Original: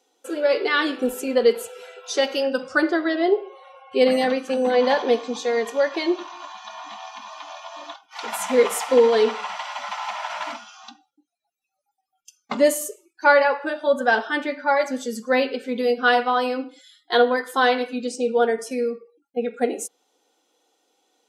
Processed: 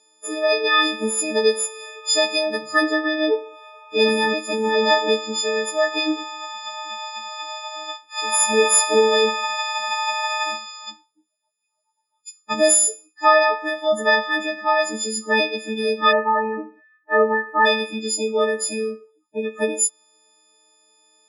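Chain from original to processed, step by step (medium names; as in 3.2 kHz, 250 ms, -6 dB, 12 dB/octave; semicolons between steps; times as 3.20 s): partials quantised in pitch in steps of 6 st; elliptic low-pass 9.9 kHz, stop band 50 dB, from 16.11 s 1.9 kHz, from 17.65 s 10 kHz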